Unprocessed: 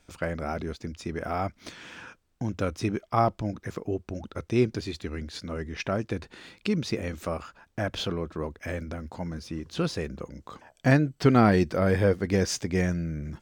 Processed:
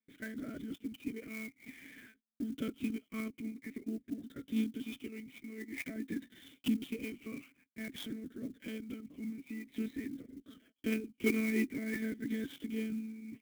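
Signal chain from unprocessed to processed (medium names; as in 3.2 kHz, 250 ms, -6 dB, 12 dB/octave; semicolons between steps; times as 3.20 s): drifting ripple filter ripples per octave 0.78, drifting -0.5 Hz, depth 15 dB; monotone LPC vocoder at 8 kHz 220 Hz; gate -51 dBFS, range -20 dB; vowel filter i; sampling jitter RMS 0.026 ms; trim +3 dB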